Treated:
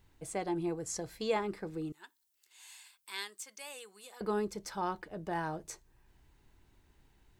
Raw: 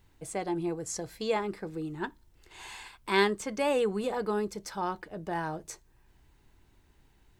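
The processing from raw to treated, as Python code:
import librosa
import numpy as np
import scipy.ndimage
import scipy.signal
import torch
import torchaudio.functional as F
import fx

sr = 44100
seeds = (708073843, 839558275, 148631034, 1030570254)

y = fx.differentiator(x, sr, at=(1.92, 4.21))
y = y * librosa.db_to_amplitude(-2.5)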